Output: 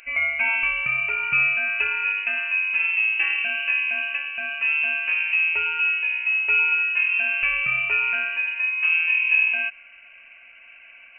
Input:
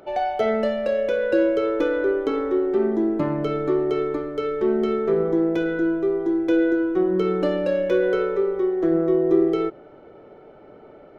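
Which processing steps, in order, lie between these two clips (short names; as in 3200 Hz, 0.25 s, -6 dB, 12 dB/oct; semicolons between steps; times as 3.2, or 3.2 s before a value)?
bell 450 Hz -10 dB 0.48 oct; inverted band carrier 2900 Hz; gain +2 dB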